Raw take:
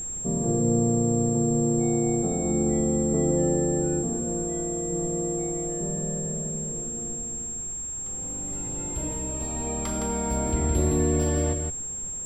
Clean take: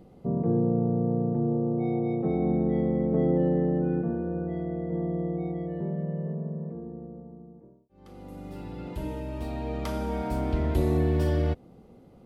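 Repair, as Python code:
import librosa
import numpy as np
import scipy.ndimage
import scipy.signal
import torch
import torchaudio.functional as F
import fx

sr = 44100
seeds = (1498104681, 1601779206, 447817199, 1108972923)

y = fx.notch(x, sr, hz=7500.0, q=30.0)
y = fx.noise_reduce(y, sr, print_start_s=11.74, print_end_s=12.24, reduce_db=18.0)
y = fx.fix_echo_inverse(y, sr, delay_ms=163, level_db=-5.5)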